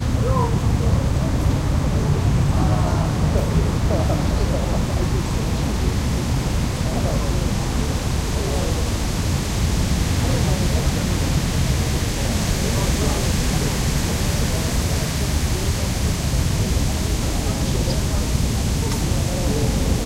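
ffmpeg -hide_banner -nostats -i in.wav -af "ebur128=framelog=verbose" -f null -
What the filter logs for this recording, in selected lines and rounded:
Integrated loudness:
  I:         -21.0 LUFS
  Threshold: -31.0 LUFS
Loudness range:
  LRA:         2.3 LU
  Threshold: -41.1 LUFS
  LRA low:   -22.1 LUFS
  LRA high:  -19.8 LUFS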